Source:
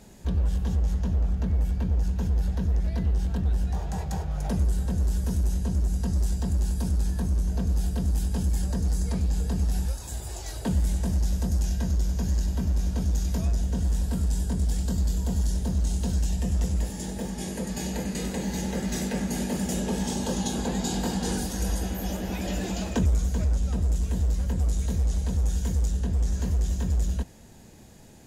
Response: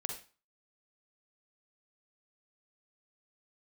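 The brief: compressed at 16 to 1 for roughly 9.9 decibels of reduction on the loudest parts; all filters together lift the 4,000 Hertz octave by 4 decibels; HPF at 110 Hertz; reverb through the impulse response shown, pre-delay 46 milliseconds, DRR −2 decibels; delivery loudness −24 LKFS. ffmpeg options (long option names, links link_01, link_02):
-filter_complex "[0:a]highpass=110,equalizer=frequency=4000:width_type=o:gain=5,acompressor=threshold=-31dB:ratio=16,asplit=2[link_01][link_02];[1:a]atrim=start_sample=2205,adelay=46[link_03];[link_02][link_03]afir=irnorm=-1:irlink=0,volume=1.5dB[link_04];[link_01][link_04]amix=inputs=2:normalize=0,volume=8dB"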